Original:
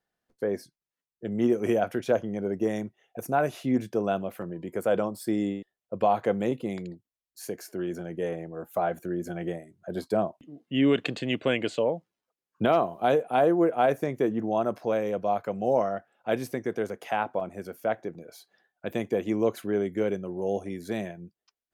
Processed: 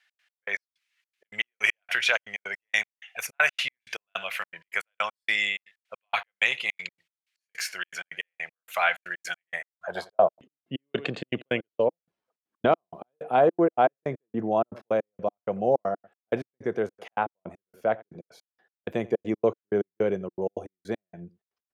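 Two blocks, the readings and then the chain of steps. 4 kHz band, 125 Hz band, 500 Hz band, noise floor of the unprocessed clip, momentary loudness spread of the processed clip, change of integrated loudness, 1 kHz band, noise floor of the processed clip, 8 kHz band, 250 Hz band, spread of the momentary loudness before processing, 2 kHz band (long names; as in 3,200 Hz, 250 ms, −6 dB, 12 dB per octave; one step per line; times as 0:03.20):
+7.0 dB, −5.0 dB, −1.5 dB, below −85 dBFS, 12 LU, 0.0 dB, 0.0 dB, below −85 dBFS, +5.0 dB, −6.0 dB, 13 LU, +10.0 dB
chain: guitar amp tone stack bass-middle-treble 10-0-10
slap from a distant wall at 15 metres, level −22 dB
gate pattern "x.x..x..xxx." 159 BPM −60 dB
band-pass filter sweep 2,300 Hz → 310 Hz, 0:09.42–0:10.52
boost into a limiter +36 dB
level −7 dB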